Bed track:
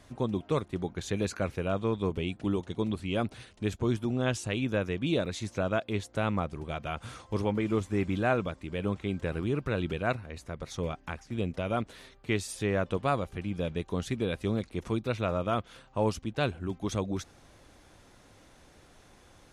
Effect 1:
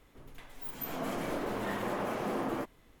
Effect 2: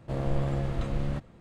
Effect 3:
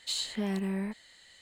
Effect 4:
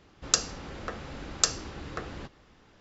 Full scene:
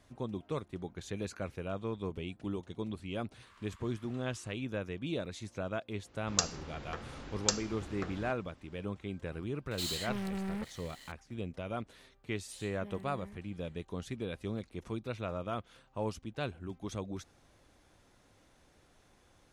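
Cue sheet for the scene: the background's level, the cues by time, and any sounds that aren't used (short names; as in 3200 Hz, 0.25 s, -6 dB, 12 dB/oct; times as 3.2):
bed track -8 dB
3.33 add 2 -14.5 dB + steep high-pass 970 Hz 96 dB/oct
6.05 add 4 -6 dB
9.71 add 3 -13.5 dB + sample leveller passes 5
12.44 add 3 -16.5 dB + bell 5000 Hz -13 dB 0.57 oct
not used: 1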